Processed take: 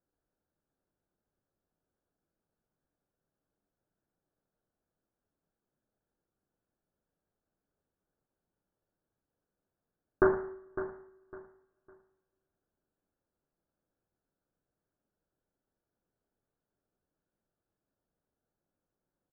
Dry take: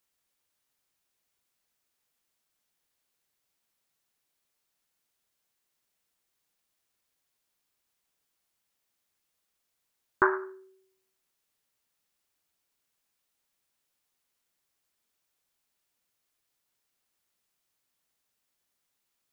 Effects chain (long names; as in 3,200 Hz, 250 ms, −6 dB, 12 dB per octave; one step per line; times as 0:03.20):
running median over 41 samples
Butterworth low-pass 1,700 Hz 72 dB per octave
repeating echo 555 ms, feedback 26%, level −12 dB
coupled-rooms reverb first 0.57 s, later 3.3 s, from −27 dB, DRR 10.5 dB
level +5 dB